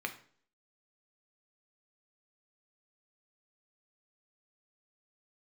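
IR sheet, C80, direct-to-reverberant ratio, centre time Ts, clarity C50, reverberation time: 17.0 dB, 5.0 dB, 9 ms, 12.5 dB, 0.50 s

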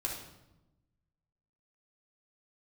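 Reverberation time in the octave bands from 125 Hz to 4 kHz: 1.6 s, 1.4 s, 1.0 s, 0.90 s, 0.75 s, 0.70 s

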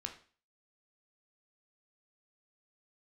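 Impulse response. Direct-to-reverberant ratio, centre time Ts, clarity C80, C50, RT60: 3.5 dB, 13 ms, 15.0 dB, 11.0 dB, 0.40 s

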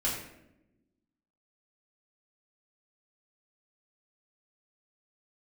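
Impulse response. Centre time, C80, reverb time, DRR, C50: 44 ms, 6.5 dB, 0.90 s, -7.5 dB, 3.5 dB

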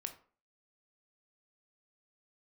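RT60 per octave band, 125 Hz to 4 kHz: 0.35 s, 0.45 s, 0.45 s, 0.40 s, 0.35 s, 0.25 s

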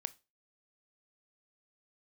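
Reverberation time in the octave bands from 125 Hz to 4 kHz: 0.35 s, 0.30 s, 0.35 s, 0.25 s, 0.25 s, 0.25 s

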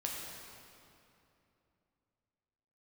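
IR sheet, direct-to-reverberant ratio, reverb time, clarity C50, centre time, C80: -2.5 dB, 2.8 s, 0.0 dB, 124 ms, 1.0 dB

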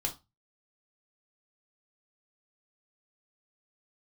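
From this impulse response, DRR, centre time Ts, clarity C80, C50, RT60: 1.0 dB, 12 ms, 22.0 dB, 14.0 dB, 0.25 s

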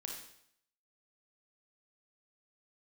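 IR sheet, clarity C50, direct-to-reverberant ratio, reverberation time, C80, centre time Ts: 3.0 dB, 0.5 dB, 0.70 s, 6.5 dB, 39 ms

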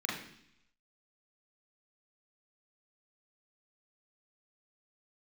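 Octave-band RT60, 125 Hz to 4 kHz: 0.90 s, 0.85 s, 0.70 s, 0.70 s, 0.85 s, 0.90 s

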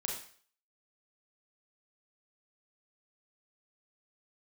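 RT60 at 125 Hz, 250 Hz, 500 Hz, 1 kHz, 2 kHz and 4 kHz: 0.45 s, 0.40 s, 0.50 s, 0.50 s, 0.50 s, 0.50 s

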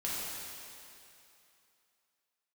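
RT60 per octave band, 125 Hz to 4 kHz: 2.4 s, 2.5 s, 2.7 s, 2.8 s, 2.7 s, 2.6 s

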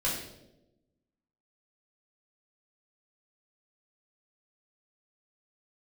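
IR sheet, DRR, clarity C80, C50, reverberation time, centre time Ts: -7.0 dB, 6.5 dB, 3.5 dB, 0.95 s, 46 ms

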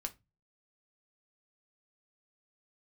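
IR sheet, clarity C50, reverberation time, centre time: 20.0 dB, 0.20 s, 5 ms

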